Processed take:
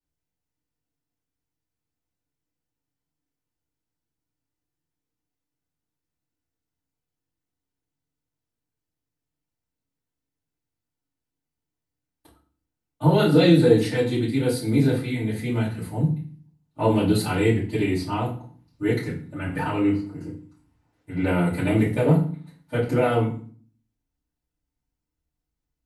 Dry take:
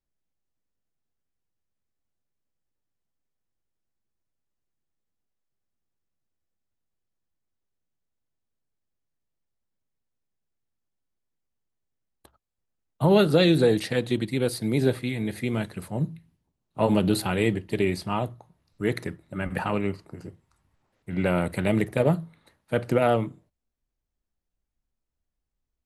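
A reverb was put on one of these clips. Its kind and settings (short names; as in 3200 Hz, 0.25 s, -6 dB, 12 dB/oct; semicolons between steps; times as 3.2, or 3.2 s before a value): FDN reverb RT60 0.43 s, low-frequency decay 1.6×, high-frequency decay 0.85×, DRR -10 dB; gain -9.5 dB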